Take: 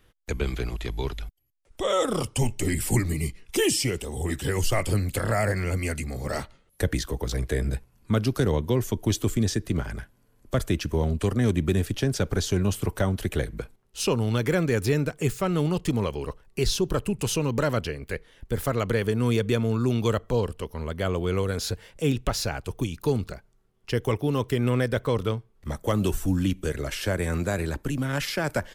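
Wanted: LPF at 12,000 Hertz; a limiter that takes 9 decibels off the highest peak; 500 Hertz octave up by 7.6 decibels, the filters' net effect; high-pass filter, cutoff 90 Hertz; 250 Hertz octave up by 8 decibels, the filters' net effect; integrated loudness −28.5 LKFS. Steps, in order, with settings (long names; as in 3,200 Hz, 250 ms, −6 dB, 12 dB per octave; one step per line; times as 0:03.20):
high-pass filter 90 Hz
low-pass filter 12,000 Hz
parametric band 250 Hz +8.5 dB
parametric band 500 Hz +6.5 dB
level −3.5 dB
brickwall limiter −17.5 dBFS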